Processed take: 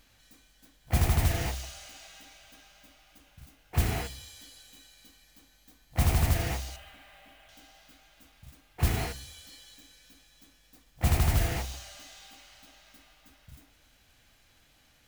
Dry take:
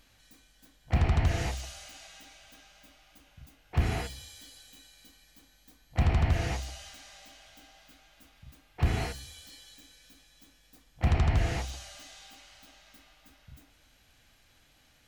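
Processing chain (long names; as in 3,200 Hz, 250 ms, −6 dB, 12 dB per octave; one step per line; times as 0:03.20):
0:06.76–0:07.49: low-pass filter 3,000 Hz 24 dB per octave
noise that follows the level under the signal 13 dB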